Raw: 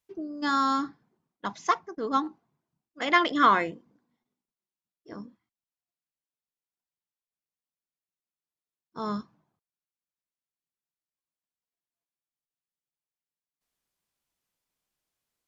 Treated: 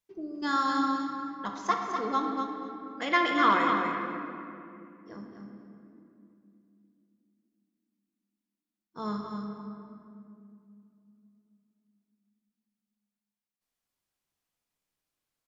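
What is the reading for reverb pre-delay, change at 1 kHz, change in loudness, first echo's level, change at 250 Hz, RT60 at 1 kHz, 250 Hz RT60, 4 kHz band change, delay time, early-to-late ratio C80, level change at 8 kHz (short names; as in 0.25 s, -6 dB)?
4 ms, -1.0 dB, -3.0 dB, -6.5 dB, +0.5 dB, 2.3 s, 4.5 s, -2.0 dB, 0.247 s, 1.5 dB, n/a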